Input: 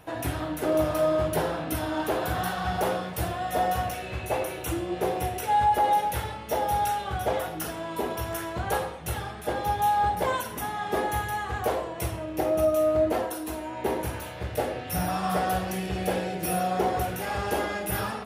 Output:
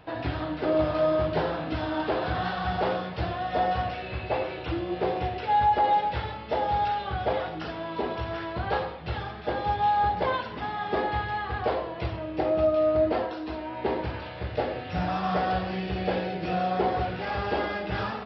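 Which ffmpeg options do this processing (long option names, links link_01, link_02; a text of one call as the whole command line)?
ffmpeg -i in.wav -af "aresample=11025,aresample=44100" out.wav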